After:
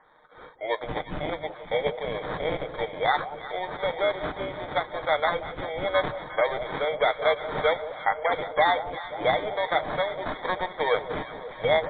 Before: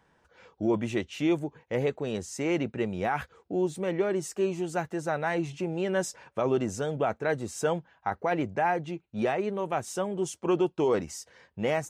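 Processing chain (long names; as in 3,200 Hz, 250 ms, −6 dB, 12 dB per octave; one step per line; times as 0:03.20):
Butterworth high-pass 500 Hz 48 dB per octave
in parallel at −1 dB: downward compressor, threshold −39 dBFS, peak gain reduction 15 dB
on the sum: decimation without filtering 16×
delay that swaps between a low-pass and a high-pass 177 ms, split 880 Hz, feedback 84%, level −12 dB
on a send at −8.5 dB: convolution reverb, pre-delay 7 ms
on the sum: level +4.5 dB
MP3 64 kbit/s 8,000 Hz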